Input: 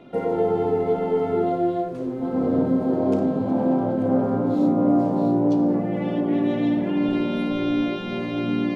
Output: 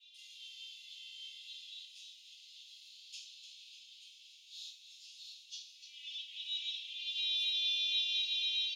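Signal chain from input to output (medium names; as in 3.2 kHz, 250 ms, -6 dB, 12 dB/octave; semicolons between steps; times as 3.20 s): steep high-pass 2.7 kHz 96 dB/octave; tilt EQ -4.5 dB/octave; frequency-shifting echo 298 ms, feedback 49%, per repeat -35 Hz, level -10 dB; reverberation RT60 0.40 s, pre-delay 3 ms, DRR -16 dB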